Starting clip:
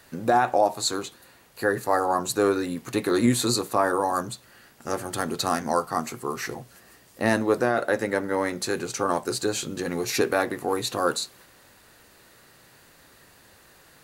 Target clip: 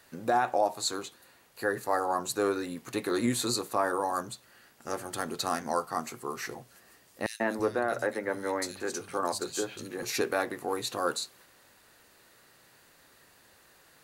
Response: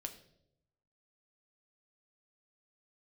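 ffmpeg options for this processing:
-filter_complex "[0:a]lowshelf=frequency=240:gain=-5.5,asettb=1/sr,asplit=3[link_01][link_02][link_03];[link_01]atrim=end=7.264[link_04];[link_02]atrim=start=7.26:end=10.03,asetpts=PTS-STARTPTS,afade=type=in:duration=0.004:curve=qsin,afade=type=out:start_time=2.766:duration=0.004:curve=qsin,acrossover=split=160|2800[link_05][link_06][link_07];[link_06]adelay=140[link_08];[link_05]adelay=330[link_09];[link_09][link_08][link_07]amix=inputs=3:normalize=0,atrim=end_sample=122157[link_10];[link_03]atrim=start=10.026[link_11];[link_04][link_10]acrossfade=duration=0.004:curve1=hsin:curve2=qsin[link_12];[link_12][link_11]acrossfade=duration=0.004:curve1=qsin:curve2=hsin,volume=-5dB"

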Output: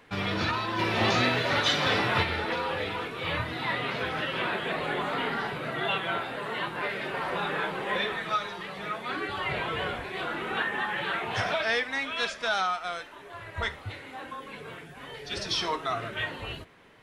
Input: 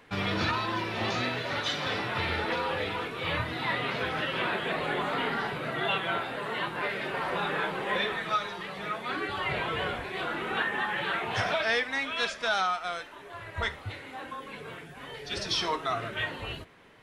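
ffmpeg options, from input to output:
ffmpeg -i in.wav -filter_complex "[0:a]asplit=3[link_01][link_02][link_03];[link_01]afade=type=out:start_time=0.78:duration=0.02[link_04];[link_02]acontrast=49,afade=type=in:start_time=0.78:duration=0.02,afade=type=out:start_time=2.22:duration=0.02[link_05];[link_03]afade=type=in:start_time=2.22:duration=0.02[link_06];[link_04][link_05][link_06]amix=inputs=3:normalize=0" out.wav

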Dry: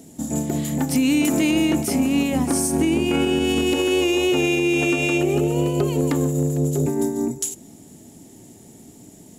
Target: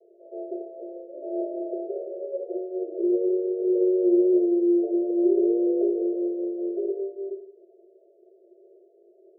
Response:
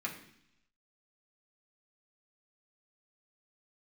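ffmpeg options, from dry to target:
-filter_complex "[0:a]asuperpass=centerf=490:order=20:qfactor=1.5[link_01];[1:a]atrim=start_sample=2205,asetrate=83790,aresample=44100[link_02];[link_01][link_02]afir=irnorm=-1:irlink=0"

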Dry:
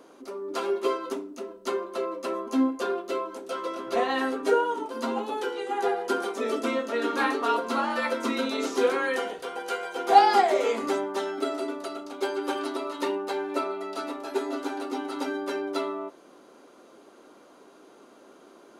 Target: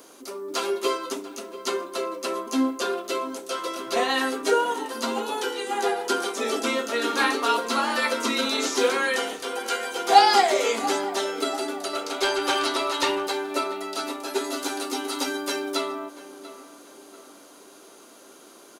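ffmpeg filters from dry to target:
ffmpeg -i in.wav -filter_complex "[0:a]asplit=2[link_01][link_02];[link_02]adelay=689,lowpass=frequency=2200:poles=1,volume=-14.5dB,asplit=2[link_03][link_04];[link_04]adelay=689,lowpass=frequency=2200:poles=1,volume=0.46,asplit=2[link_05][link_06];[link_06]adelay=689,lowpass=frequency=2200:poles=1,volume=0.46,asplit=2[link_07][link_08];[link_08]adelay=689,lowpass=frequency=2200:poles=1,volume=0.46[link_09];[link_01][link_03][link_05][link_07][link_09]amix=inputs=5:normalize=0,asettb=1/sr,asplit=3[link_10][link_11][link_12];[link_10]atrim=end=11.934[link_13];[link_11]atrim=start=11.93:end=13.27,asetpts=PTS-STARTPTS,afade=type=in:duration=0.004:curve=qsin,afade=type=out:start_time=1.336:duration=0.004:curve=qsin,asplit=2[link_14][link_15];[link_15]highpass=frequency=720:poles=1,volume=13dB,asoftclip=type=tanh:threshold=-15.5dB[link_16];[link_14][link_16]amix=inputs=2:normalize=0,lowpass=frequency=4700:poles=1,volume=-6dB[link_17];[link_12]atrim=start=13.266[link_18];[link_13][link_17]acrossfade=duration=0.004:curve1=hsin:curve2=qsin[link_19];[link_19][link_18]acrossfade=duration=0.004:curve1=qsin:curve2=hsin,crystalizer=i=5:c=0,acrossover=split=7400[link_20][link_21];[link_21]acompressor=threshold=-42dB:ratio=4:attack=1:release=60[link_22];[link_20][link_22]amix=inputs=2:normalize=0,asettb=1/sr,asplit=3[link_23][link_24][link_25];[link_23]atrim=end=14.444[link_26];[link_24]atrim=start=14.44:end=15.75,asetpts=PTS-STARTPTS,afade=type=in:duration=0.004:curve=qsin,afade=type=out:start_time=1.306:duration=0.004:curve=qsin,highshelf=frequency=4500:gain=5.5[link_27];[link_25]atrim=start=15.746[link_28];[link_26][link_27]acrossfade=duration=0.004:curve1=hsin:curve2=qsin[link_29];[link_29][link_28]acrossfade=duration=0.004:curve1=qsin:curve2=hsin" out.wav

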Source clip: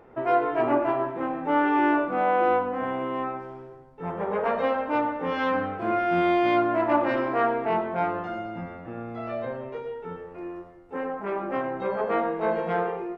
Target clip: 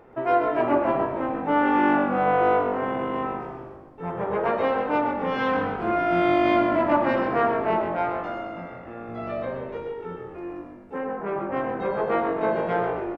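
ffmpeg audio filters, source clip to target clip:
ffmpeg -i in.wav -filter_complex "[0:a]asettb=1/sr,asplit=3[link_01][link_02][link_03];[link_01]atrim=end=7.964[link_04];[link_02]atrim=start=7.96:end=9.09,asetpts=PTS-STARTPTS,afade=type=in:duration=0.004:curve=qsin,afade=type=out:start_time=1.126:duration=0.004:curve=qsin,lowshelf=frequency=200:gain=-11.5[link_05];[link_03]atrim=start=9.086[link_06];[link_04][link_05]acrossfade=duration=0.004:curve1=hsin:curve2=qsin[link_07];[link_07][link_06]acrossfade=duration=0.004:curve1=qsin:curve2=hsin,asettb=1/sr,asplit=3[link_08][link_09][link_10];[link_08]atrim=end=10.984[link_11];[link_09]atrim=start=10.98:end=11.57,asetpts=PTS-STARTPTS,afade=type=in:duration=0.004:curve=qsin,afade=type=out:start_time=0.586:duration=0.004:curve=qsin,lowpass=frequency=2400:poles=1[link_12];[link_10]atrim=start=11.566[link_13];[link_11][link_12]acrossfade=duration=0.004:curve1=hsin:curve2=qsin[link_14];[link_14][link_13]acrossfade=duration=0.004:curve1=qsin:curve2=hsin,asplit=7[link_15][link_16][link_17][link_18][link_19][link_20][link_21];[link_16]adelay=130,afreqshift=-49,volume=-8.5dB[link_22];[link_17]adelay=260,afreqshift=-98,volume=-14.5dB[link_23];[link_18]adelay=390,afreqshift=-147,volume=-20.5dB[link_24];[link_19]adelay=520,afreqshift=-196,volume=-26.6dB[link_25];[link_20]adelay=650,afreqshift=-245,volume=-32.6dB[link_26];[link_21]adelay=780,afreqshift=-294,volume=-38.6dB[link_27];[link_15][link_22][link_23][link_24][link_25][link_26][link_27]amix=inputs=7:normalize=0,volume=1dB" out.wav

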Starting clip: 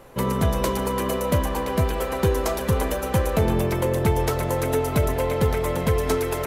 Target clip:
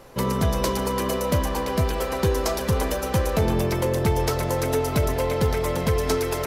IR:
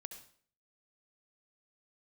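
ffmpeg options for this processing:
-af "equalizer=frequency=5100:width_type=o:width=0.7:gain=7,asoftclip=type=tanh:threshold=-10.5dB"

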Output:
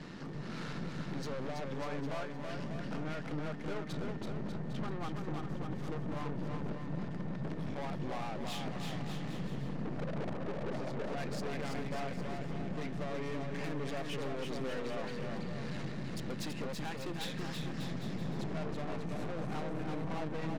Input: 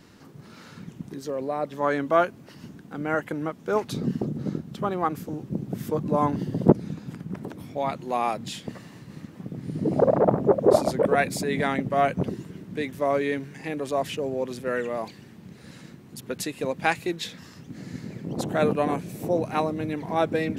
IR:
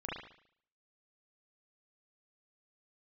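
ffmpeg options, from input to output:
-filter_complex "[0:a]lowpass=4700,lowshelf=frequency=110:width_type=q:width=3:gain=-7.5,acompressor=threshold=-36dB:ratio=8,aeval=exprs='val(0)+0.000398*sin(2*PI*1800*n/s)':channel_layout=same,aeval=exprs='(tanh(200*val(0)+0.6)-tanh(0.6))/200':channel_layout=same,asplit=2[link_01][link_02];[link_02]aecho=0:1:330|594|805.2|974.2|1109:0.631|0.398|0.251|0.158|0.1[link_03];[link_01][link_03]amix=inputs=2:normalize=0,volume=7.5dB"

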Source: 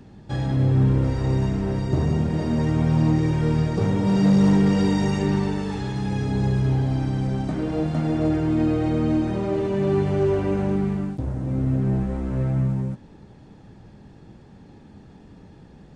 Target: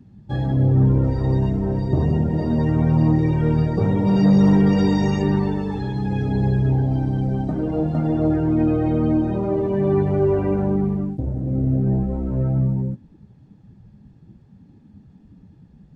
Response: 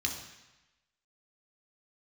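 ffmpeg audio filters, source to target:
-af "afftdn=noise_reduction=15:noise_floor=-35,volume=2.5dB"

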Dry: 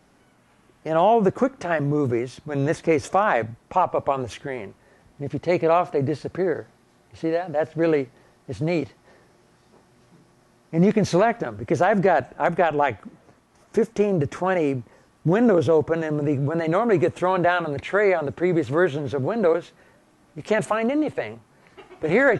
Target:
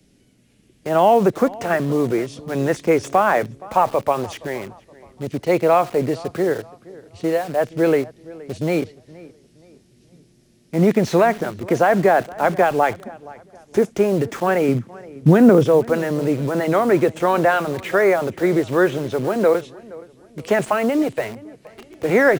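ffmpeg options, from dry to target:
ffmpeg -i in.wav -filter_complex "[0:a]asettb=1/sr,asplit=3[link_01][link_02][link_03];[link_01]atrim=end=14.684[link_04];[link_02]atrim=start=14.68:end=15.64,asetpts=PTS-STARTPTS,afade=type=in:duration=0.004:curve=qsin,afade=type=out:start_time=0.956:duration=0.004:curve=qsin,equalizer=frequency=140:width=0.91:gain=10.5[link_05];[link_03]atrim=start=15.636[link_06];[link_04][link_05]acrossfade=duration=0.004:curve1=hsin:curve2=qsin[link_07];[link_07][link_06]acrossfade=duration=0.004:curve1=qsin:curve2=hsin,acrossover=split=140|490|2200[link_08][link_09][link_10][link_11];[link_08]acompressor=threshold=-43dB:ratio=6[link_12];[link_10]acrusher=bits=6:mix=0:aa=0.000001[link_13];[link_11]asoftclip=type=hard:threshold=-34.5dB[link_14];[link_12][link_09][link_13][link_14]amix=inputs=4:normalize=0,asplit=2[link_15][link_16];[link_16]adelay=471,lowpass=frequency=2600:poles=1,volume=-20.5dB,asplit=2[link_17][link_18];[link_18]adelay=471,lowpass=frequency=2600:poles=1,volume=0.37,asplit=2[link_19][link_20];[link_20]adelay=471,lowpass=frequency=2600:poles=1,volume=0.37[link_21];[link_15][link_17][link_19][link_21]amix=inputs=4:normalize=0,volume=3.5dB" out.wav

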